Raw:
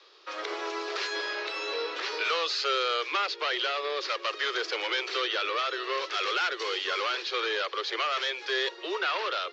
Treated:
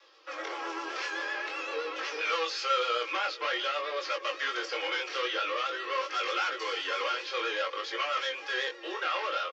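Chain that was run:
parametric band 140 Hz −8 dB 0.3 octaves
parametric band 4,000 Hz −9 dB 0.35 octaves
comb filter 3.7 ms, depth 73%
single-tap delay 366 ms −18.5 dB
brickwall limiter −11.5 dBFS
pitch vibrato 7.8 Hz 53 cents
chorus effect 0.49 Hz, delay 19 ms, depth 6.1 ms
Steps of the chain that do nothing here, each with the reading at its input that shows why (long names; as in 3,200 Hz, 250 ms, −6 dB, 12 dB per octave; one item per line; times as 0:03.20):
parametric band 140 Hz: nothing at its input below 270 Hz
brickwall limiter −11.5 dBFS: peak of its input −15.0 dBFS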